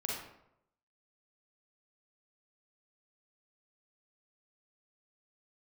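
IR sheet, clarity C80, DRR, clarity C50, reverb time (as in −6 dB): 4.5 dB, −3.5 dB, −0.5 dB, 0.80 s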